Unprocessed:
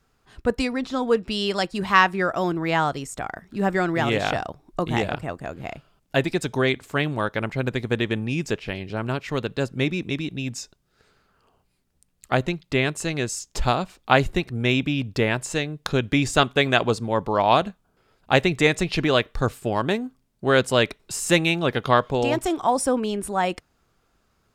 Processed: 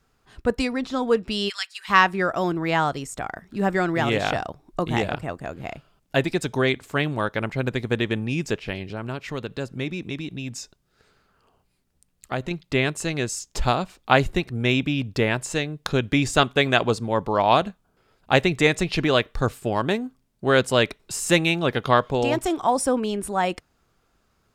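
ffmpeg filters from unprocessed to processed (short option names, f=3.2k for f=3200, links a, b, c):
-filter_complex "[0:a]asplit=3[a][b][c];[a]afade=t=out:st=1.48:d=0.02[d];[b]highpass=f=1.5k:w=0.5412,highpass=f=1.5k:w=1.3066,afade=t=in:st=1.48:d=0.02,afade=t=out:st=1.88:d=0.02[e];[c]afade=t=in:st=1.88:d=0.02[f];[d][e][f]amix=inputs=3:normalize=0,asettb=1/sr,asplit=3[g][h][i];[g]atrim=end=8.924[j];[h]atrim=start=8.92:end=12.51,asetpts=PTS-STARTPTS,afade=t=in:d=0.004:c=qsin,afade=t=out:st=3.586:d=0.004:c=qsin,acompressor=threshold=-32dB:ratio=1.5:attack=3.2:release=140:knee=1:detection=peak[k];[i]atrim=start=12.506[l];[j][k]acrossfade=d=0.004:c1=hsin:c2=qsin[m];[m][l]acrossfade=d=0.004:c1=qsin:c2=hsin"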